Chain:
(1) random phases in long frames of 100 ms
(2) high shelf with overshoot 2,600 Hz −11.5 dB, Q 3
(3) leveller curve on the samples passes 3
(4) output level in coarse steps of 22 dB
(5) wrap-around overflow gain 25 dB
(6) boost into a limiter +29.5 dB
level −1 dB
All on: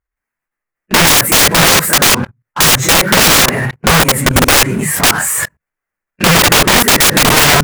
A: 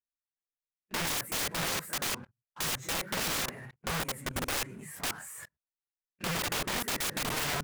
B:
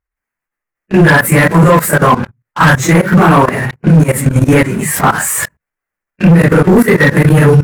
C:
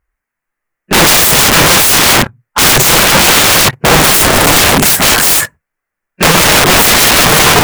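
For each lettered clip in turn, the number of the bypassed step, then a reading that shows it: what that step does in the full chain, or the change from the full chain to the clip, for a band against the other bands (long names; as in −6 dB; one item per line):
6, change in integrated loudness −24.0 LU
5, change in crest factor −1.5 dB
4, change in crest factor −2.5 dB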